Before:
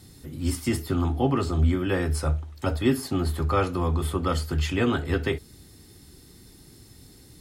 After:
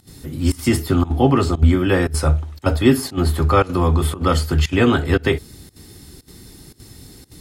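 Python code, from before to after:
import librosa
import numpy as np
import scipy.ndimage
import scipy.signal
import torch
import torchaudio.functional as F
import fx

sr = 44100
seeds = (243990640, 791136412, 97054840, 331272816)

y = fx.volume_shaper(x, sr, bpm=116, per_beat=1, depth_db=-19, release_ms=70.0, shape='slow start')
y = y * librosa.db_to_amplitude(8.5)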